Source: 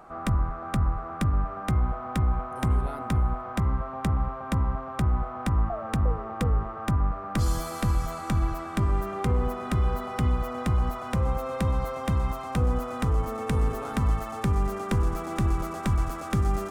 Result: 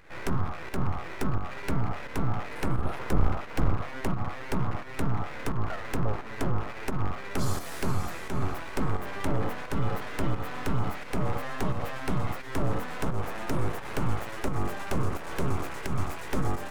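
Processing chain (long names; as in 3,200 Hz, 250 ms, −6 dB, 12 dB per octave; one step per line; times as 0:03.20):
0:02.77–0:03.74: sub-octave generator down 1 octave, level +2 dB
full-wave rectification
fake sidechain pumping 87 BPM, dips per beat 1, −7 dB, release 184 ms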